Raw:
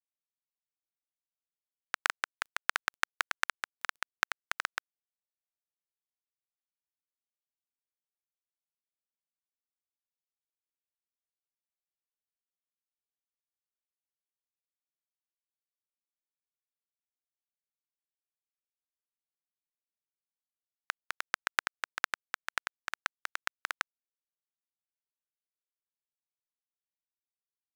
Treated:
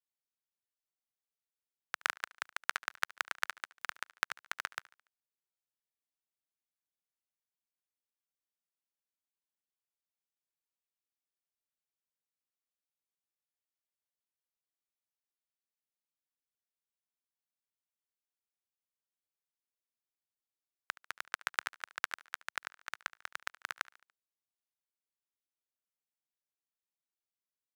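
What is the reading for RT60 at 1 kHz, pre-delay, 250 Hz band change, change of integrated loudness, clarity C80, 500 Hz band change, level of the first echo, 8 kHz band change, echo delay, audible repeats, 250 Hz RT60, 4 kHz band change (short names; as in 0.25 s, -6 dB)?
none, none, -4.0 dB, -4.0 dB, none, -4.0 dB, -21.0 dB, -4.0 dB, 72 ms, 3, none, -4.0 dB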